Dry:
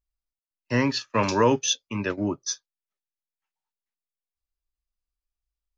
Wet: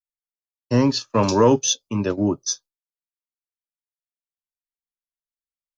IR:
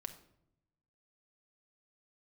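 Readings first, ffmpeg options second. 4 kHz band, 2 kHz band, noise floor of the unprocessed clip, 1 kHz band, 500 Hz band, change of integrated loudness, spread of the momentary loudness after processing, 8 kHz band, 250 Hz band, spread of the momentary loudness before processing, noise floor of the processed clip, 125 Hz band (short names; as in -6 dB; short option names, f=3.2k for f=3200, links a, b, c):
+2.5 dB, -5.0 dB, under -85 dBFS, +2.5 dB, +5.5 dB, +4.5 dB, 9 LU, n/a, +6.0 dB, 10 LU, under -85 dBFS, +6.0 dB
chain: -af "equalizer=f=2k:w=1.3:g=-15,agate=range=-33dB:threshold=-45dB:ratio=3:detection=peak,acontrast=69"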